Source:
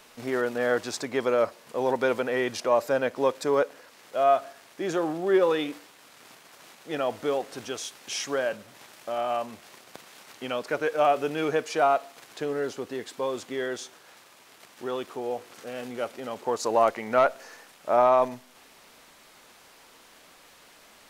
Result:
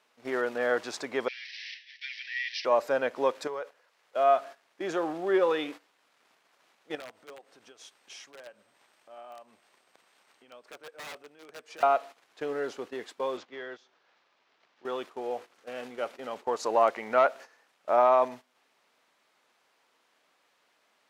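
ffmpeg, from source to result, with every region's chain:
-filter_complex "[0:a]asettb=1/sr,asplit=3[a][b][c];[a]atrim=end=1.284[d];[b]atrim=start=1.28:end=2.65,asetpts=PTS-STARTPTS,afade=t=in:d=0.004:c=qsin,afade=t=out:st=1.366:d=0.004:c=qsin,aeval=exprs='val(0)+0.5*0.0398*sgn(val(0))':c=same,asuperpass=centerf=3200:order=20:qfactor=0.82[e];[c]atrim=start=2.646[f];[d][e]acrossfade=d=0.004:c1=hsin:c2=qsin[g];[g][f]acrossfade=d=0.004:c1=qsin:c2=hsin,asettb=1/sr,asplit=3[h][i][j];[h]atrim=end=3.474[k];[i]atrim=start=3.47:end=4.16,asetpts=PTS-STARTPTS,afade=t=in:d=0.004:c=qsin,afade=t=out:st=0.686:d=0.004:c=qsin,equalizer=f=260:w=2:g=-11,acompressor=threshold=-30dB:ratio=5:attack=3.2:release=140:knee=1:detection=peak[l];[j]atrim=start=4.156[m];[k][l]acrossfade=d=0.004:c1=hsin:c2=qsin[n];[n][m]acrossfade=d=0.004:c1=qsin:c2=hsin,asettb=1/sr,asplit=3[o][p][q];[o]atrim=end=6.954[r];[p]atrim=start=6.95:end=11.83,asetpts=PTS-STARTPTS,afade=t=in:d=0.004:c=qsin,afade=t=out:st=4.876:d=0.004:c=qsin,aeval=exprs='(mod(8.41*val(0)+1,2)-1)/8.41':c=same,aeval=exprs='val(0)+0.00141*sin(2*PI*8400*n/s)':c=same,acompressor=threshold=-37dB:ratio=10:attack=3.2:release=140:knee=1:detection=peak[s];[q]atrim=start=11.826[t];[r][s]acrossfade=d=0.004:c1=hsin:c2=qsin[u];[u][t]acrossfade=d=0.004:c1=qsin:c2=hsin,asettb=1/sr,asplit=3[v][w][x];[v]atrim=end=13.374[y];[w]atrim=start=13.37:end=14.85,asetpts=PTS-STARTPTS,afade=t=in:d=0.004:c=qsin,afade=t=out:st=1.476:d=0.004:c=qsin,lowpass=f=5.6k:w=0.5412,lowpass=f=5.6k:w=1.3066,acrossover=split=190|720|1500[z][aa][ab][ac];[z]acompressor=threshold=-53dB:ratio=3[ad];[aa]acompressor=threshold=-42dB:ratio=3[ae];[ab]acompressor=threshold=-46dB:ratio=3[af];[ac]acompressor=threshold=-45dB:ratio=3[ag];[ad][ae][af][ag]amix=inputs=4:normalize=0[ah];[x]atrim=start=14.846[ai];[y][ah]acrossfade=d=0.004:c1=hsin:c2=qsin[aj];[aj][ai]acrossfade=d=0.004:c1=qsin:c2=hsin,highpass=f=440:p=1,agate=range=-13dB:threshold=-41dB:ratio=16:detection=peak,lowpass=f=3.4k:p=1"

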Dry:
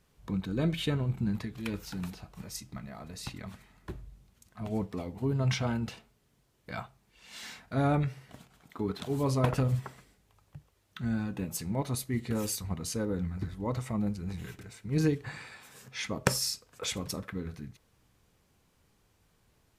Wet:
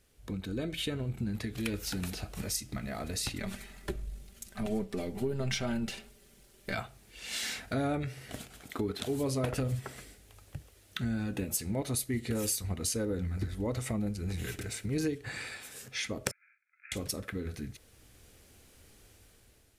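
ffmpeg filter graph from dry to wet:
-filter_complex "[0:a]asettb=1/sr,asplit=3[a][b][c];[a]atrim=end=3.394[d];[b]atrim=start=3.39:end=6.74,asetpts=PTS-STARTPTS,afade=t=in:d=0.004:c=qsin,afade=t=out:st=3.346:d=0.004:c=qsin,aeval=exprs='if(lt(val(0),0),0.708*val(0),val(0))':c=same,aecho=1:1:5.1:0.63,atrim=end_sample=147735[e];[c]atrim=start=6.736[f];[d][e]acrossfade=d=0.004:c1=hsin:c2=qsin[g];[g][f]acrossfade=d=0.004:c1=qsin:c2=hsin,asettb=1/sr,asplit=3[h][i][j];[h]atrim=end=16.314[k];[i]atrim=start=16.31:end=16.92,asetpts=PTS-STARTPTS,afade=t=in:d=0.004:c=qsin,afade=t=out:st=0.606:d=0.004:c=qsin,asuperpass=centerf=1900:order=12:qfactor=3.7,aeval=exprs='val(0)*sin(2*PI*350*n/s)':c=same[l];[j]atrim=start=16.916[m];[k][l]acrossfade=d=0.004:c1=hsin:c2=qsin[n];[n][m]acrossfade=d=0.004:c1=qsin:c2=hsin,dynaudnorm=f=830:g=3:m=10dB,equalizer=f=160:t=o:w=0.67:g=-10,equalizer=f=1k:t=o:w=0.67:g=-10,equalizer=f=10k:t=o:w=0.67:g=5,acompressor=threshold=-35dB:ratio=3,volume=2dB"

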